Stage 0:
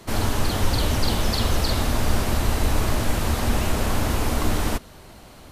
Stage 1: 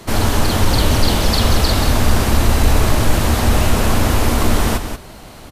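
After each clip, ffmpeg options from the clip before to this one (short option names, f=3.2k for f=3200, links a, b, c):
-filter_complex "[0:a]acontrast=48,asplit=2[a][b];[b]aecho=0:1:183:0.376[c];[a][c]amix=inputs=2:normalize=0,volume=1.5dB"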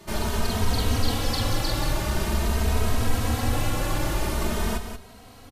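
-filter_complex "[0:a]asplit=2[a][b];[b]adelay=2.9,afreqshift=0.46[c];[a][c]amix=inputs=2:normalize=1,volume=-7dB"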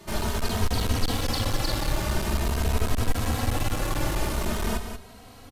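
-af "aeval=exprs='clip(val(0),-1,0.0596)':c=same"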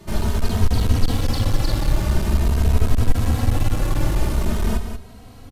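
-af "lowshelf=f=310:g=10,volume=-1dB"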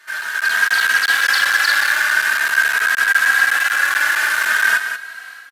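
-af "highpass=f=1.6k:t=q:w=15,dynaudnorm=f=310:g=3:m=12dB"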